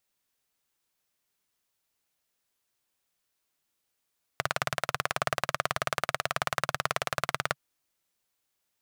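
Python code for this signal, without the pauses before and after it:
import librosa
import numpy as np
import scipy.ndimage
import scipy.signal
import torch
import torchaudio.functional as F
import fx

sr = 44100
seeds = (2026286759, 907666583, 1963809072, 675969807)

y = fx.engine_single(sr, seeds[0], length_s=3.16, rpm=2200, resonances_hz=(140.0, 660.0, 1200.0))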